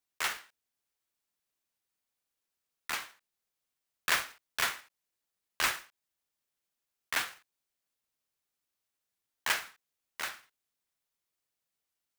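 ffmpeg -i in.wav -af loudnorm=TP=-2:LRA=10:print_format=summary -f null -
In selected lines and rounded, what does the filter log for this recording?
Input Integrated:    -34.0 LUFS
Input True Peak:     -13.6 dBTP
Input LRA:             7.2 LU
Input Threshold:     -45.4 LUFS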